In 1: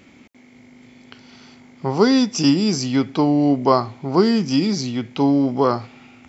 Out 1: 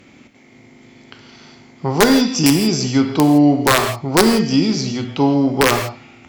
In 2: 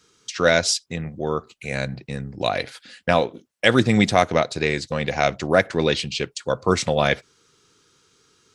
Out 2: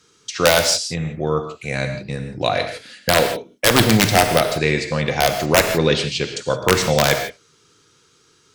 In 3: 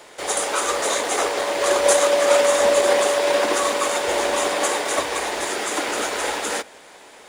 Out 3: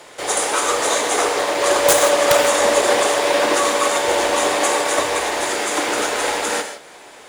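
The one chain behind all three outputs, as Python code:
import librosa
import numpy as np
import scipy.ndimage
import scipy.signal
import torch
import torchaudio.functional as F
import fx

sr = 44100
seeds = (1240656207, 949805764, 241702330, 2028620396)

y = (np.mod(10.0 ** (6.0 / 20.0) * x + 1.0, 2.0) - 1.0) / 10.0 ** (6.0 / 20.0)
y = fx.rev_gated(y, sr, seeds[0], gate_ms=190, shape='flat', drr_db=5.5)
y = fx.cheby_harmonics(y, sr, harmonics=(4,), levels_db=(-36,), full_scale_db=-3.5)
y = y * 10.0 ** (2.5 / 20.0)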